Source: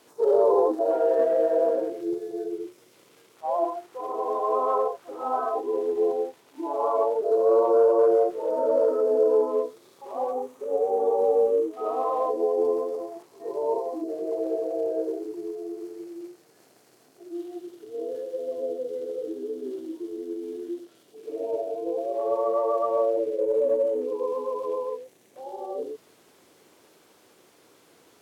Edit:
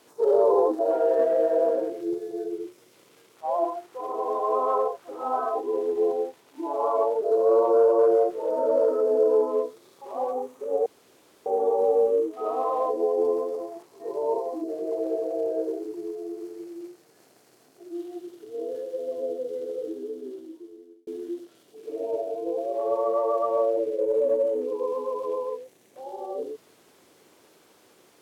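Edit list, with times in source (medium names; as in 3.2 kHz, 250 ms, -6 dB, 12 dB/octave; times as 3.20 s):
10.86 s: insert room tone 0.60 s
19.25–20.47 s: fade out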